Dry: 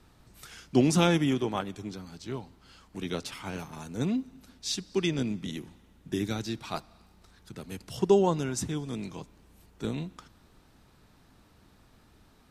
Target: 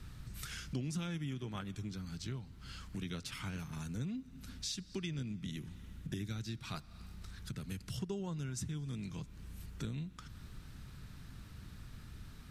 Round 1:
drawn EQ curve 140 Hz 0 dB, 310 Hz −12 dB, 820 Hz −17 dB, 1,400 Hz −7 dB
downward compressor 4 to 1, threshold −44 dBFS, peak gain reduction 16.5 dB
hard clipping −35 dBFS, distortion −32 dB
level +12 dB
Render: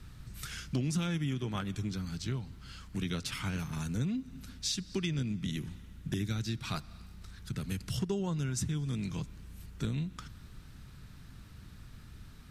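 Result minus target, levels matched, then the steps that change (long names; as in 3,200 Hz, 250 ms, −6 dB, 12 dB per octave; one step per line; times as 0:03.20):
downward compressor: peak gain reduction −7 dB
change: downward compressor 4 to 1, threshold −53 dBFS, peak gain reduction 23.5 dB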